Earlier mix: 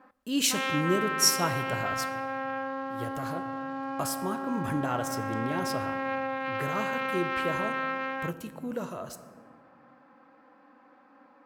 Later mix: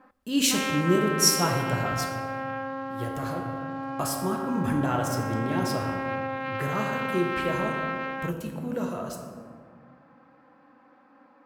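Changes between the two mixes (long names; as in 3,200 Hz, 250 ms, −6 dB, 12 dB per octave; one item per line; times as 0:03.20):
speech: send +9.5 dB
master: add low-shelf EQ 190 Hz +4.5 dB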